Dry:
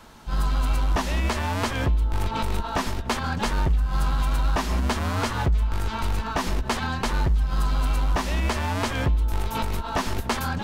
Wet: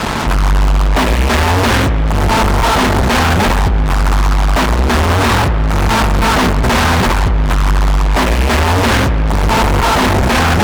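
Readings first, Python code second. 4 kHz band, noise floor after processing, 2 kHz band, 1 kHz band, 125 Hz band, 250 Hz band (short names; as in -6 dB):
+14.5 dB, -13 dBFS, +15.5 dB, +14.5 dB, +12.5 dB, +14.5 dB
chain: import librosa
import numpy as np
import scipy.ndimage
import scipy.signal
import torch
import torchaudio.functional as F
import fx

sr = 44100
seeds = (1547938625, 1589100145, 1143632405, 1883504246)

y = scipy.signal.medfilt(x, 9)
y = fx.spec_gate(y, sr, threshold_db=-30, keep='strong')
y = scipy.signal.sosfilt(scipy.signal.butter(2, 41.0, 'highpass', fs=sr, output='sos'), y)
y = fx.over_compress(y, sr, threshold_db=-29.0, ratio=-1.0)
y = fx.fuzz(y, sr, gain_db=53.0, gate_db=-46.0)
y = fx.echo_wet_lowpass(y, sr, ms=83, feedback_pct=81, hz=2700.0, wet_db=-15.0)
y = fx.doppler_dist(y, sr, depth_ms=0.37)
y = y * 10.0 ** (2.5 / 20.0)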